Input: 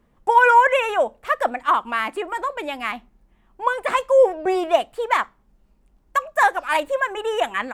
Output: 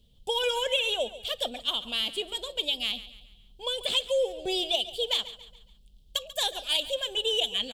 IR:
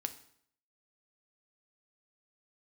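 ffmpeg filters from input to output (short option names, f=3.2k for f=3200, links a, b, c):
-af "firequalizer=gain_entry='entry(100,0);entry(320,-16);entry(450,-8);entry(1100,-28);entry(2000,-21);entry(3200,14);entry(5800,1)':delay=0.05:min_phase=1,acompressor=threshold=-25dB:ratio=6,aecho=1:1:140|280|420|560:0.168|0.0722|0.031|0.0133,volume=2.5dB"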